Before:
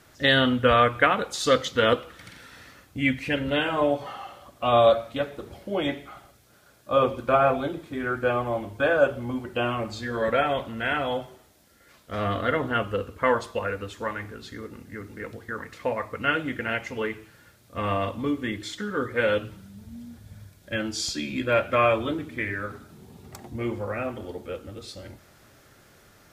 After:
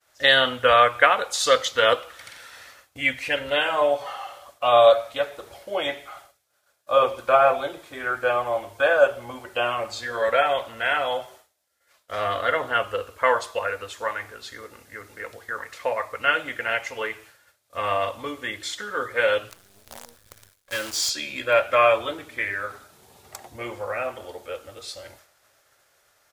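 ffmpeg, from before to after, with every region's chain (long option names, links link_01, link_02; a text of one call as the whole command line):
ffmpeg -i in.wav -filter_complex "[0:a]asettb=1/sr,asplit=3[link_01][link_02][link_03];[link_01]atrim=end=19.504[link_04];[link_02]atrim=start=19.5:end=21.1,asetpts=PTS-STARTPTS,afade=type=in:duration=0.004:curve=qsin,afade=type=out:start_time=1.596:duration=0.004:curve=qsin,asuperstop=centerf=750:order=8:qfactor=1.9,asoftclip=type=hard:threshold=-25dB,acrusher=bits=7:dc=4:mix=0:aa=0.000001[link_05];[link_03]atrim=start=21.096[link_06];[link_04][link_05]acrossfade=duration=0.004:curve1=hsin:curve2=qsin[link_07];[link_07][link_06]acrossfade=duration=0.004:curve1=qsin:curve2=hsin,equalizer=frequency=9100:width=0.58:gain=3.5,agate=range=-33dB:threshold=-46dB:ratio=3:detection=peak,firequalizer=gain_entry='entry(100,0);entry(190,-6);entry(560,13)':delay=0.05:min_phase=1,volume=-9.5dB" out.wav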